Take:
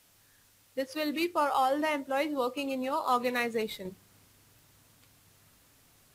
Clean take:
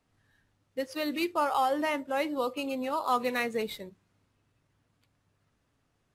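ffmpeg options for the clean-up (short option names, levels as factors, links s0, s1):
-af "adeclick=t=4,agate=range=0.0891:threshold=0.00178,asetnsamples=n=441:p=0,asendcmd='3.85 volume volume -7.5dB',volume=1"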